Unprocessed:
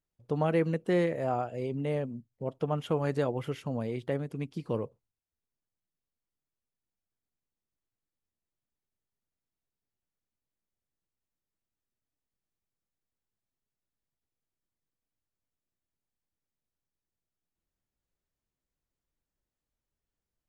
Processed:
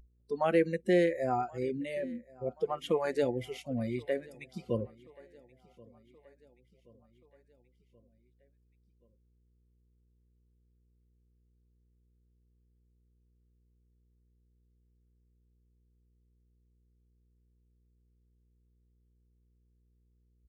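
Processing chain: buzz 60 Hz, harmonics 8, -48 dBFS -9 dB/oct; spectral noise reduction 23 dB; spectral gain 3.21–3.72, 880–2000 Hz -12 dB; on a send: feedback echo 1.078 s, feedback 57%, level -24 dB; on the sum: gain +2 dB

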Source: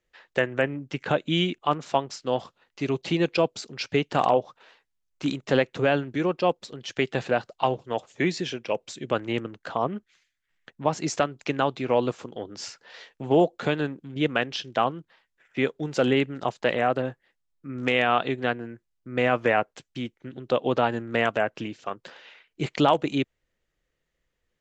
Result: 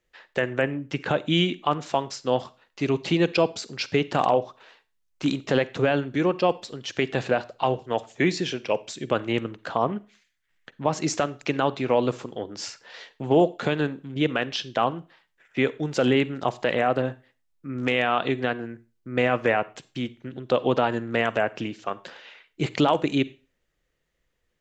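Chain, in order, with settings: limiter -12.5 dBFS, peak gain reduction 5.5 dB; reverb RT60 0.35 s, pre-delay 38 ms, DRR 18 dB; gain +2.5 dB

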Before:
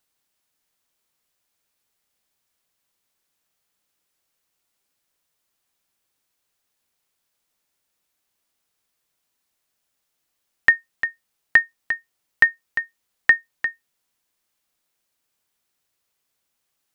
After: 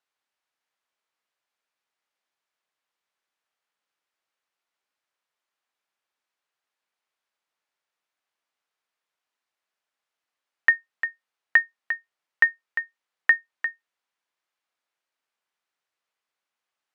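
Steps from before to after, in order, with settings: band-pass 1300 Hz, Q 0.61; gain -2.5 dB

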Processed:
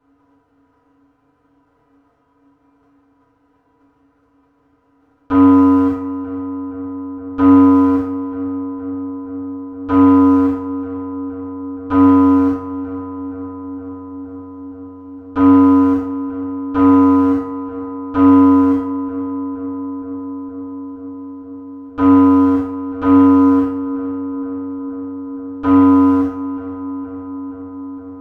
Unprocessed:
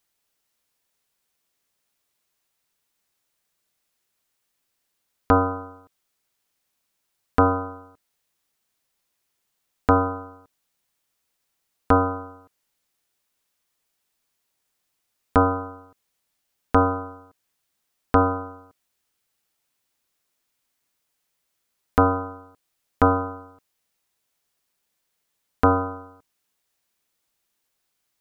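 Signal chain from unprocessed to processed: per-bin compression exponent 0.2; gate -24 dBFS, range -31 dB; soft clip -8.5 dBFS, distortion -17 dB; resonator 140 Hz, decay 0.52 s, harmonics all, mix 80%; on a send: darkening echo 0.468 s, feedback 81%, low-pass 2000 Hz, level -12.5 dB; on the sum: FDN reverb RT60 0.47 s, low-frequency decay 1×, high-frequency decay 0.85×, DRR -9 dB; gain -1 dB

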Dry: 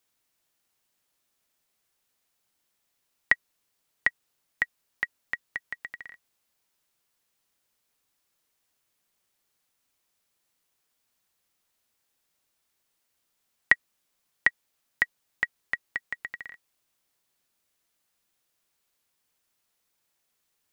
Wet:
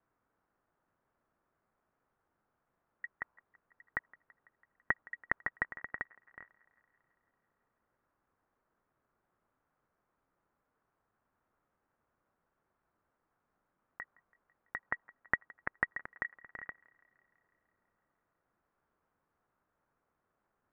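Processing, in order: slices in reverse order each 95 ms, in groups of 4; dynamic EQ 970 Hz, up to +5 dB, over -41 dBFS, Q 1.2; negative-ratio compressor -23 dBFS, ratio -0.5; Chebyshev low-pass 1400 Hz, order 3; thinning echo 0.166 s, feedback 70%, high-pass 330 Hz, level -23.5 dB; gain +2.5 dB

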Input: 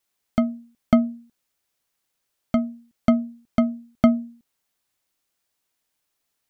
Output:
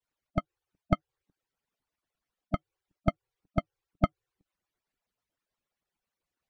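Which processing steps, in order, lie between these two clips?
median-filter separation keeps percussive; LPF 1700 Hz 6 dB/oct; low shelf 120 Hz +4 dB

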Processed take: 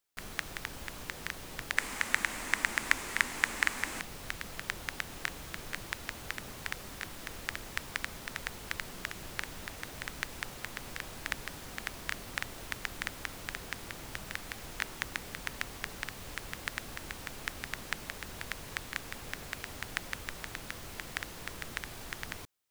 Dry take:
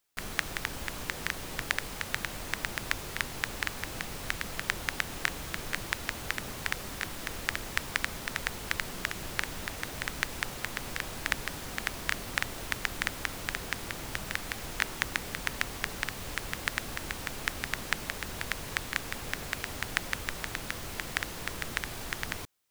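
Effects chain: 1.77–4.01 graphic EQ 125/250/1000/2000/8000 Hz -7/+8/+6/+10/+9 dB; gain -5.5 dB

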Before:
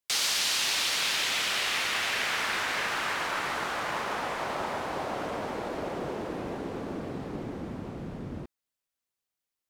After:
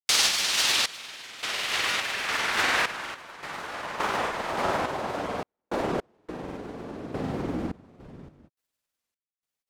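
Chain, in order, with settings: grains, pitch spread up and down by 0 st; random-step tremolo, depth 100%; gain +8 dB

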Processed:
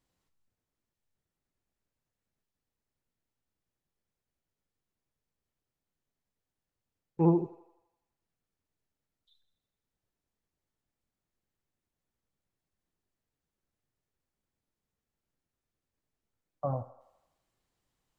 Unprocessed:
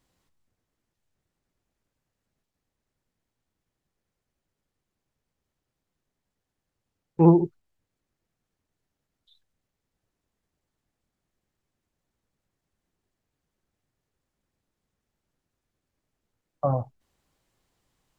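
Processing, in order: resonator 450 Hz, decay 0.69 s, mix 50%; thinning echo 83 ms, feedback 61%, high-pass 390 Hz, level -14.5 dB; gain -2 dB

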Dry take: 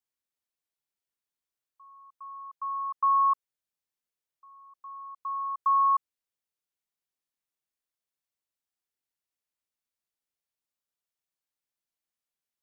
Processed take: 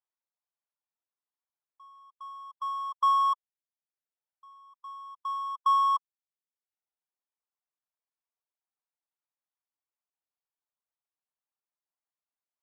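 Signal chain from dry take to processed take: half-waves squared off; reverb removal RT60 0.78 s; band-pass 920 Hz, Q 1.6

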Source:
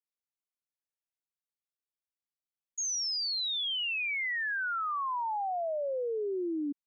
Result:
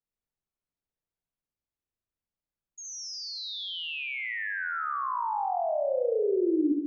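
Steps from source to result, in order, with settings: tilt -3.5 dB/oct; flutter echo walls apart 11.8 m, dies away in 1.1 s

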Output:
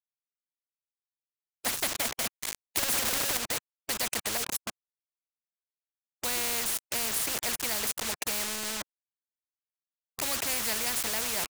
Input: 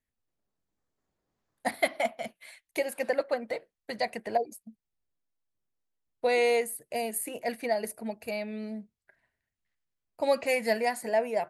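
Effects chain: 2.77–3.37 infinite clipping; bit-crush 7-bit; bell 7300 Hz +4.5 dB 0.93 oct; spectral compressor 4:1; gain -1.5 dB

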